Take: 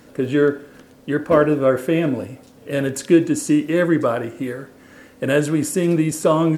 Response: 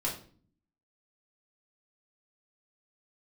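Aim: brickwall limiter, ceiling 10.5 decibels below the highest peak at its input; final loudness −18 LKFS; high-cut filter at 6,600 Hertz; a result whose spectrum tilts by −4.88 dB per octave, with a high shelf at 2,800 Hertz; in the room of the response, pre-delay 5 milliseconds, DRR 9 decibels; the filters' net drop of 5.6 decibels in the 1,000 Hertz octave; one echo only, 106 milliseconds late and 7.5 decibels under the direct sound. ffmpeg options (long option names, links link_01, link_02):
-filter_complex "[0:a]lowpass=6600,equalizer=frequency=1000:width_type=o:gain=-9,highshelf=frequency=2800:gain=9,alimiter=limit=-14.5dB:level=0:latency=1,aecho=1:1:106:0.422,asplit=2[link_01][link_02];[1:a]atrim=start_sample=2205,adelay=5[link_03];[link_02][link_03]afir=irnorm=-1:irlink=0,volume=-14dB[link_04];[link_01][link_04]amix=inputs=2:normalize=0,volume=6dB"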